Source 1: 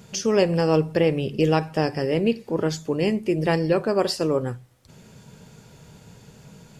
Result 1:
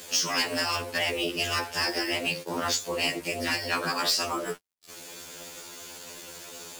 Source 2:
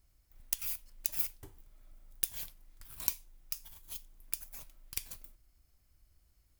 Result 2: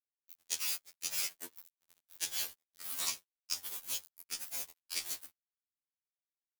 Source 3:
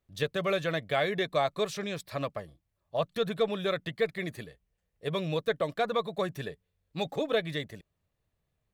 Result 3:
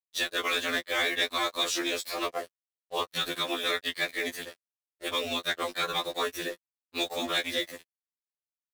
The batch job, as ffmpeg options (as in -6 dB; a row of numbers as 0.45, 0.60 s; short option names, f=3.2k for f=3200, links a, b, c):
-filter_complex "[0:a]highpass=f=300:w=0.5412,highpass=f=300:w=1.3066,afftfilt=real='re*lt(hypot(re,im),0.251)':imag='im*lt(hypot(re,im),0.251)':win_size=1024:overlap=0.75,equalizer=f=800:w=5:g=-3.5,acrossover=split=7800[a][b];[b]acompressor=threshold=-51dB:ratio=4:attack=1:release=60[c];[a][c]amix=inputs=2:normalize=0,highshelf=f=2.7k:g=9,asplit=2[d][e];[e]acompressor=threshold=-39dB:ratio=16,volume=-3dB[f];[d][f]amix=inputs=2:normalize=0,acrusher=bits=6:mix=0:aa=0.5,aeval=exprs='val(0)*sin(2*PI*65*n/s)':c=same,volume=24.5dB,asoftclip=hard,volume=-24.5dB,afftfilt=real='re*2*eq(mod(b,4),0)':imag='im*2*eq(mod(b,4),0)':win_size=2048:overlap=0.75,volume=7.5dB"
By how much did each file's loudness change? -4.5, 0.0, +1.5 LU